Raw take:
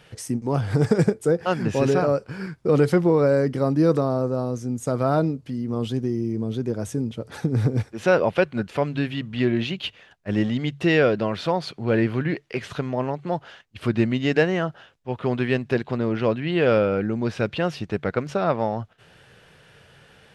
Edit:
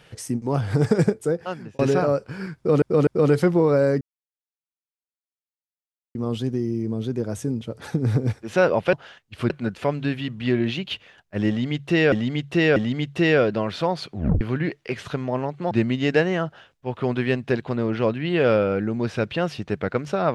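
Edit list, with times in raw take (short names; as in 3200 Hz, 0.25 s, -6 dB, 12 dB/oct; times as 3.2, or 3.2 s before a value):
1.12–1.79 fade out
2.57–2.82 loop, 3 plays
3.51–5.65 mute
10.41–11.05 loop, 3 plays
11.79 tape stop 0.27 s
13.36–13.93 move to 8.43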